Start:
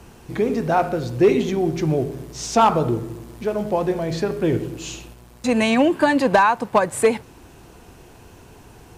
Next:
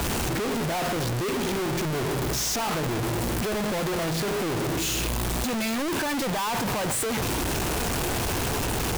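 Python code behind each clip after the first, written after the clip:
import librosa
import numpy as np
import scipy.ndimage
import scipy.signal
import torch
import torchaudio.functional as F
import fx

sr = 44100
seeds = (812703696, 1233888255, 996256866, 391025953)

y = np.sign(x) * np.sqrt(np.mean(np.square(x)))
y = y * 10.0 ** (-5.5 / 20.0)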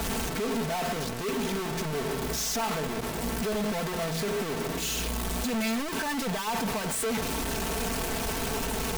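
y = x + 0.7 * np.pad(x, (int(4.5 * sr / 1000.0), 0))[:len(x)]
y = y * 10.0 ** (-5.0 / 20.0)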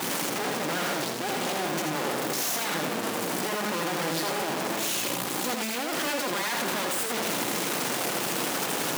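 y = np.minimum(x, 2.0 * 10.0 ** (-40.5 / 20.0) - x)
y = scipy.signal.sosfilt(scipy.signal.butter(4, 170.0, 'highpass', fs=sr, output='sos'), y)
y = y + 10.0 ** (-4.5 / 20.0) * np.pad(y, (int(82 * sr / 1000.0), 0))[:len(y)]
y = y * 10.0 ** (5.0 / 20.0)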